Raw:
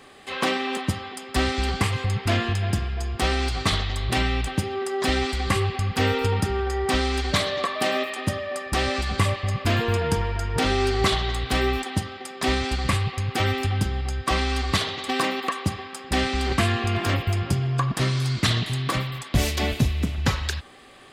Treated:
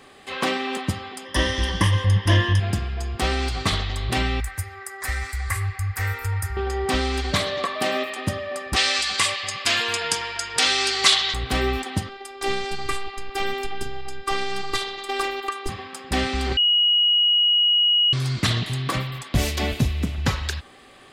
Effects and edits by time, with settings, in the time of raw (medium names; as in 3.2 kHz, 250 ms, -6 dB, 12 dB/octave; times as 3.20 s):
1.25–2.60 s: rippled EQ curve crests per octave 1.2, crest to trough 15 dB
4.40–6.57 s: FFT filter 100 Hz 0 dB, 170 Hz -29 dB, 900 Hz -8 dB, 2 kHz +2 dB, 3 kHz -16 dB, 9.1 kHz +4 dB, 13 kHz +10 dB
8.76–11.34 s: frequency weighting ITU-R 468
12.09–15.69 s: robot voice 393 Hz
16.57–18.13 s: bleep 2.9 kHz -15 dBFS